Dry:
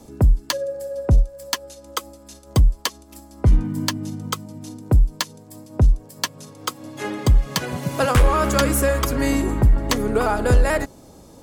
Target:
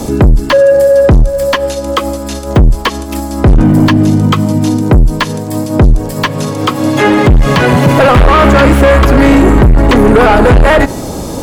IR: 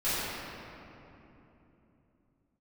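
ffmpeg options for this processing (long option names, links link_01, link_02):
-filter_complex "[0:a]asoftclip=type=tanh:threshold=-24dB,acrossover=split=3400[link_01][link_02];[link_02]acompressor=threshold=-52dB:ratio=4:attack=1:release=60[link_03];[link_01][link_03]amix=inputs=2:normalize=0,asplit=2[link_04][link_05];[1:a]atrim=start_sample=2205,afade=type=out:start_time=0.23:duration=0.01,atrim=end_sample=10584[link_06];[link_05][link_06]afir=irnorm=-1:irlink=0,volume=-34dB[link_07];[link_04][link_07]amix=inputs=2:normalize=0,alimiter=level_in=27.5dB:limit=-1dB:release=50:level=0:latency=1,volume=-1dB"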